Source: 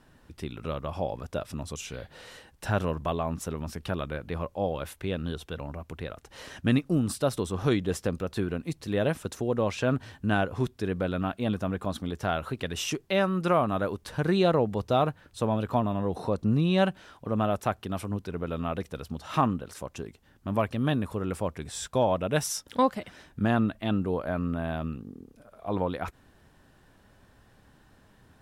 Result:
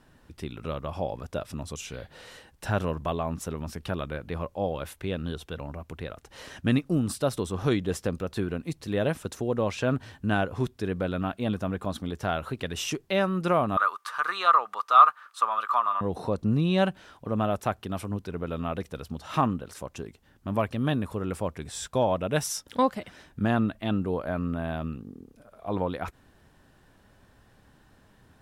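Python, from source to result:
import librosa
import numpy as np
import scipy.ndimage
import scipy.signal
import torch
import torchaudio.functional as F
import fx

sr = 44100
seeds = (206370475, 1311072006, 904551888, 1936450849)

y = fx.highpass_res(x, sr, hz=1200.0, q=14.0, at=(13.77, 16.01))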